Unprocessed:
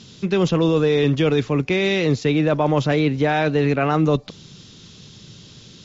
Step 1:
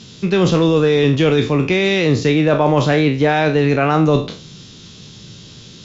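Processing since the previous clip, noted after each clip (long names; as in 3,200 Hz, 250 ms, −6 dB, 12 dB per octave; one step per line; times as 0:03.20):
peak hold with a decay on every bin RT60 0.38 s
level +3.5 dB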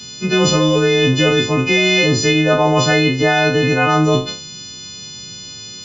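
every partial snapped to a pitch grid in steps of 3 semitones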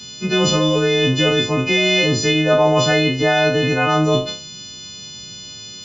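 tuned comb filter 69 Hz, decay 0.54 s, harmonics odd, mix 60%
level +4.5 dB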